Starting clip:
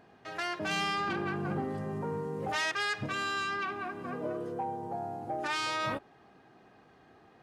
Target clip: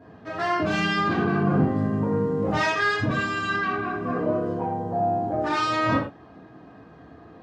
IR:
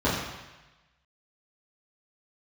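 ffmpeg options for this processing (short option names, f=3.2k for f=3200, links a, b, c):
-filter_complex "[1:a]atrim=start_sample=2205,atrim=end_sample=6174,asetrate=48510,aresample=44100[a];[0:a][a]afir=irnorm=-1:irlink=0,volume=-6dB"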